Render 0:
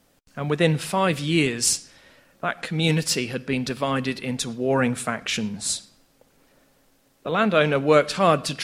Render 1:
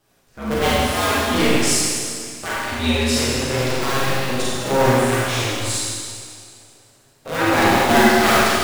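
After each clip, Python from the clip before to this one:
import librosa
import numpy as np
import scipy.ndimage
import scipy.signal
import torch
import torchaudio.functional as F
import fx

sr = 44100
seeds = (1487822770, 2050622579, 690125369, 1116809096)

y = fx.cycle_switch(x, sr, every=2, mode='inverted')
y = fx.chorus_voices(y, sr, voices=4, hz=0.26, base_ms=12, depth_ms=4.7, mix_pct=45)
y = fx.rev_schroeder(y, sr, rt60_s=2.1, comb_ms=33, drr_db=-7.5)
y = y * 10.0 ** (-1.0 / 20.0)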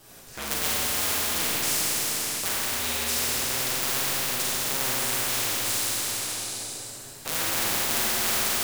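y = fx.high_shelf(x, sr, hz=5200.0, db=9.0)
y = fx.spectral_comp(y, sr, ratio=4.0)
y = y * 10.0 ** (-5.0 / 20.0)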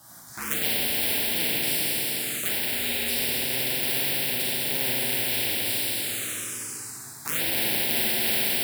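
y = scipy.signal.sosfilt(scipy.signal.butter(2, 120.0, 'highpass', fs=sr, output='sos'), x)
y = fx.env_phaser(y, sr, low_hz=420.0, high_hz=1200.0, full_db=-24.0)
y = y * 10.0 ** (3.5 / 20.0)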